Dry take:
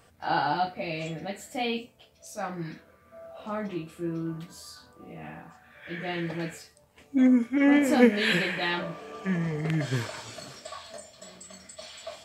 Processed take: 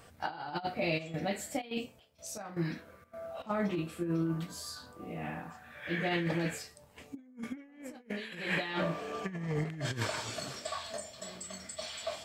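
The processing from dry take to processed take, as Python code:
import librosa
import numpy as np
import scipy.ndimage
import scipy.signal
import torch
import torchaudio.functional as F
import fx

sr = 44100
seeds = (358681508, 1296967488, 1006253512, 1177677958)

y = fx.over_compress(x, sr, threshold_db=-32.0, ratio=-0.5)
y = fx.step_gate(y, sr, bpm=158, pattern='xx.xxx..xx..xxx', floor_db=-12.0, edge_ms=4.5, at=(0.97, 3.49), fade=0.02)
y = y * 10.0 ** (-2.5 / 20.0)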